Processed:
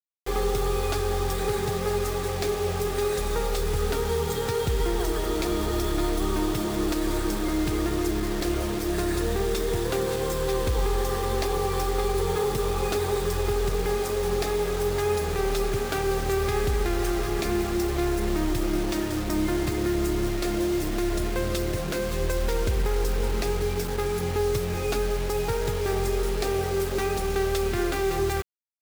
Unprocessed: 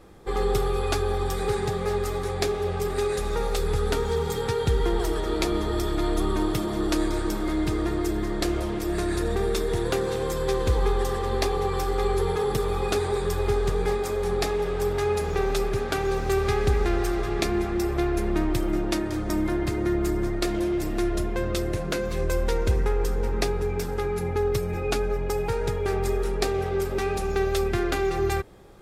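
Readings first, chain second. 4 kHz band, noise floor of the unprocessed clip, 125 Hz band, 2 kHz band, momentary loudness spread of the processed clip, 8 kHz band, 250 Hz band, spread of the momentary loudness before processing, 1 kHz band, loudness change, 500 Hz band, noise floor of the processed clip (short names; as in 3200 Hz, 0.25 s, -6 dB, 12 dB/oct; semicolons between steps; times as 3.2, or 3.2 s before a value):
+1.0 dB, -29 dBFS, -1.0 dB, 0.0 dB, 2 LU, +3.0 dB, -0.5 dB, 3 LU, -0.5 dB, -0.5 dB, -0.5 dB, -29 dBFS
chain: limiter -16.5 dBFS, peak gain reduction 6 dB; bit-crush 6-bit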